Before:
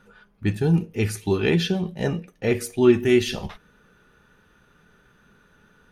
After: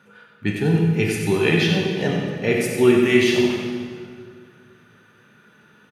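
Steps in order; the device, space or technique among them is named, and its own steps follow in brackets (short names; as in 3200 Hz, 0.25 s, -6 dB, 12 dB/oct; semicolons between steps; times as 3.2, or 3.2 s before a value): PA in a hall (HPF 110 Hz 24 dB/oct; bell 2300 Hz +5 dB 1.1 oct; echo 93 ms -7 dB; reverb RT60 2.1 s, pre-delay 18 ms, DRR 1 dB)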